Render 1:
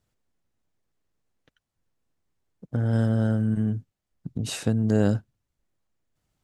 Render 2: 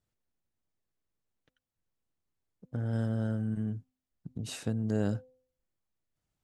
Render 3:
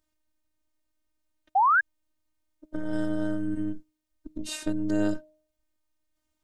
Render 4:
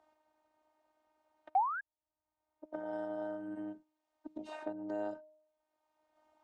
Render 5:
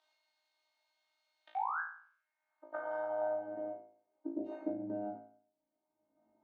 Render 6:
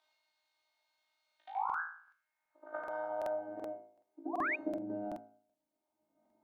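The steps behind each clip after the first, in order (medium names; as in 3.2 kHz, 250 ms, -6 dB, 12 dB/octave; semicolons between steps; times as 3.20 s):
de-hum 255.9 Hz, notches 4; trim -8.5 dB
robot voice 309 Hz; painted sound rise, 1.55–1.81 s, 730–1700 Hz -28 dBFS; trim +8 dB
band-pass filter 790 Hz, Q 4; three bands compressed up and down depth 70%; trim +3.5 dB
band-pass sweep 3.9 kHz -> 230 Hz, 1.37–4.88 s; flutter echo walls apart 3.1 m, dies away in 0.52 s; trim +9.5 dB
painted sound rise, 4.33–4.56 s, 650–2600 Hz -34 dBFS; pre-echo 77 ms -13 dB; crackling interface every 0.38 s, samples 2048, repeat, from 0.89 s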